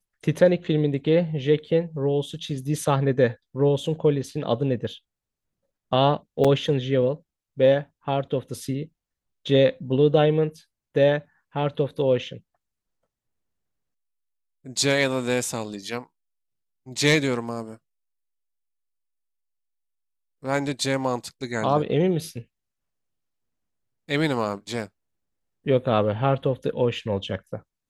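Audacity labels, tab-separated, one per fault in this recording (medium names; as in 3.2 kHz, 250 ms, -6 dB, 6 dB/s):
6.440000	6.450000	dropout 5.9 ms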